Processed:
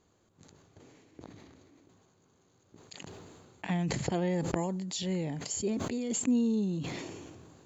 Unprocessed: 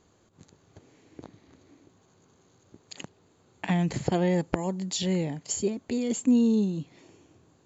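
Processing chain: decay stretcher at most 29 dB/s; trim -6 dB

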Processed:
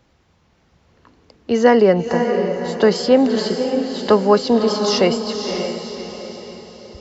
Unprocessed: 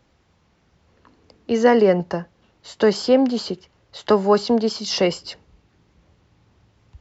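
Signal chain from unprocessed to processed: echo that smears into a reverb 564 ms, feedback 44%, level -6 dB; trim +2.5 dB

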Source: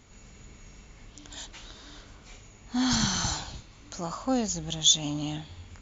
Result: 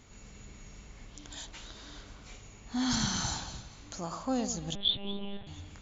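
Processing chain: in parallel at -2.5 dB: compression, threshold -43 dBFS, peak gain reduction 25 dB; on the sum: echo whose repeats swap between lows and highs 113 ms, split 1 kHz, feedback 56%, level -9.5 dB; 4.75–5.47 s: monotone LPC vocoder at 8 kHz 200 Hz; trim -5.5 dB

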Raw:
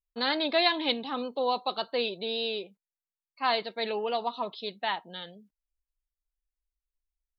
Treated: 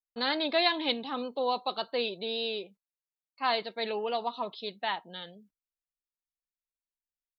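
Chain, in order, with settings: gate with hold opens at -48 dBFS; trim -1.5 dB

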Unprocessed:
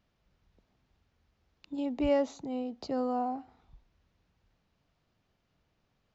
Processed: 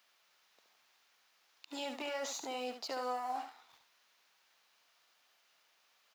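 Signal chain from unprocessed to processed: waveshaping leveller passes 1; high-pass 1 kHz 12 dB/octave; treble shelf 4.6 kHz +8 dB; peak limiter -42.5 dBFS, peak gain reduction 18.5 dB; delay 72 ms -8 dB; trim +10 dB

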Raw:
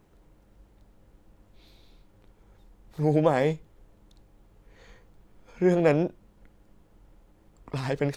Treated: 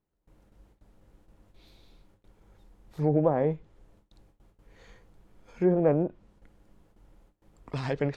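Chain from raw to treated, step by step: gate with hold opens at -48 dBFS; low-pass that closes with the level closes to 960 Hz, closed at -18 dBFS; trim -1.5 dB

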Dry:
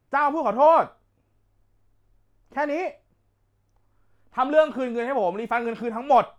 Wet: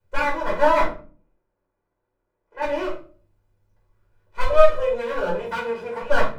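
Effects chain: comb filter that takes the minimum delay 2 ms; 0.84–2.62 s: three-band isolator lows -20 dB, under 230 Hz, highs -15 dB, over 2.2 kHz; 4.41–4.89 s: comb 1.7 ms, depth 77%; 5.40–6.02 s: high-pass 98 Hz 12 dB/octave; simulated room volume 270 m³, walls furnished, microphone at 4.8 m; trim -9 dB

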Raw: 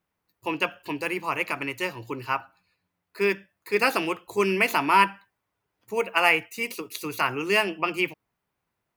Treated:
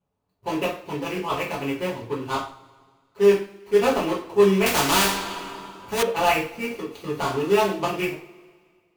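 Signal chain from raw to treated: median filter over 25 samples; two-slope reverb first 0.39 s, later 1.8 s, from -22 dB, DRR -6.5 dB; 4.66–6.03 s: spectrum-flattening compressor 2:1; trim -1.5 dB

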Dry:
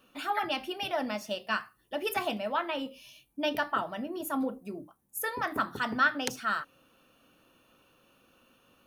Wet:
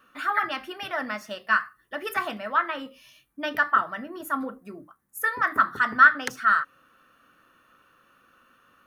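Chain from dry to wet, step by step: high-order bell 1.5 kHz +12 dB 1.1 oct; trim -1.5 dB

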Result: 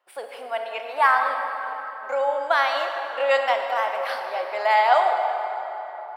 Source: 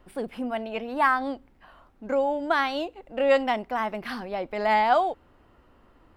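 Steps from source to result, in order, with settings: high-pass 580 Hz 24 dB/octave; gate -60 dBFS, range -13 dB; on a send: reverberation RT60 4.1 s, pre-delay 22 ms, DRR 3.5 dB; on the sum: trim +3.5 dB

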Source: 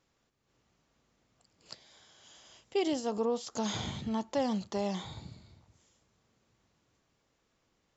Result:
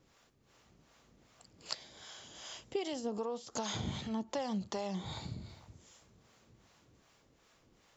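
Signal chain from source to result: compression 4:1, threshold -44 dBFS, peak gain reduction 15.5 dB; harmonic tremolo 2.6 Hz, depth 70%, crossover 510 Hz; trim +11 dB

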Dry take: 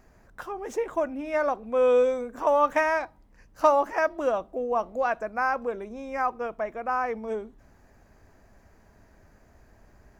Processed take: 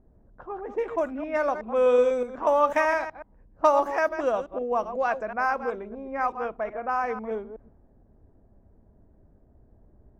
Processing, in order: chunks repeated in reverse 124 ms, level -10 dB; level-controlled noise filter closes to 440 Hz, open at -21.5 dBFS

